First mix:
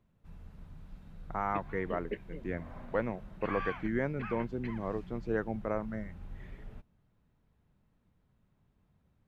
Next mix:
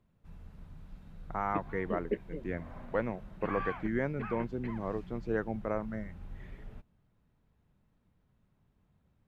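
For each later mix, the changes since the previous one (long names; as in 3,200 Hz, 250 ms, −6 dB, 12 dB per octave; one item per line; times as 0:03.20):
background: add tilt shelving filter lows +6.5 dB, about 1,400 Hz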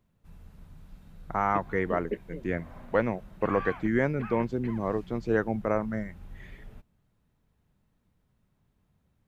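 second voice +6.5 dB
master: add high-shelf EQ 5,900 Hz +10.5 dB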